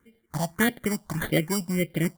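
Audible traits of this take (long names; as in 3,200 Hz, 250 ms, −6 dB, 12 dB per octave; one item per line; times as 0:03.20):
aliases and images of a low sample rate 2,600 Hz, jitter 0%
phaser sweep stages 4, 1.7 Hz, lowest notch 370–1,100 Hz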